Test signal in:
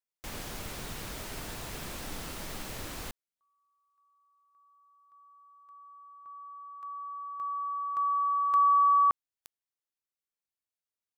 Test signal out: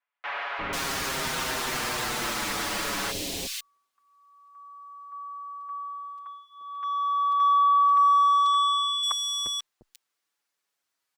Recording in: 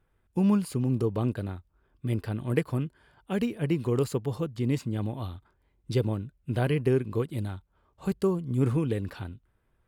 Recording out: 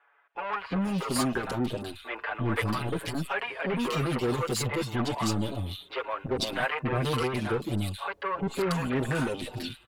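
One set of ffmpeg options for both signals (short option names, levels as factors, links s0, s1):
-filter_complex "[0:a]asplit=2[s0][s1];[s1]highpass=f=720:p=1,volume=12.6,asoftclip=type=tanh:threshold=0.237[s2];[s0][s2]amix=inputs=2:normalize=0,lowpass=f=3500:p=1,volume=0.501,acrossover=split=610|2700[s3][s4][s5];[s3]adelay=350[s6];[s5]adelay=490[s7];[s6][s4][s7]amix=inputs=3:normalize=0,acrossover=split=1300[s8][s9];[s8]asoftclip=type=tanh:threshold=0.0355[s10];[s10][s9]amix=inputs=2:normalize=0,asplit=2[s11][s12];[s12]adelay=6.5,afreqshift=-0.39[s13];[s11][s13]amix=inputs=2:normalize=1,volume=1.88"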